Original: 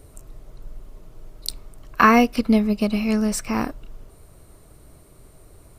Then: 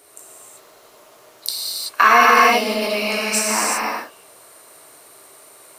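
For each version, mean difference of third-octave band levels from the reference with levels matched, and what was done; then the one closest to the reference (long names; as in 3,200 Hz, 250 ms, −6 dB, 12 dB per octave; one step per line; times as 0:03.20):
11.5 dB: Bessel high-pass filter 870 Hz, order 2
in parallel at −7 dB: soft clipping −21 dBFS, distortion −5 dB
on the sum: reverb whose tail is shaped and stops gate 410 ms flat, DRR −5.5 dB
boost into a limiter +4 dB
level −1 dB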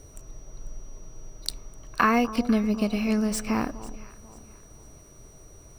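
4.0 dB: running median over 3 samples
downward compressor 2 to 1, threshold −20 dBFS, peak gain reduction 6 dB
steady tone 5,800 Hz −53 dBFS
delay that swaps between a low-pass and a high-pass 247 ms, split 1,100 Hz, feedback 57%, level −13.5 dB
level −1.5 dB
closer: second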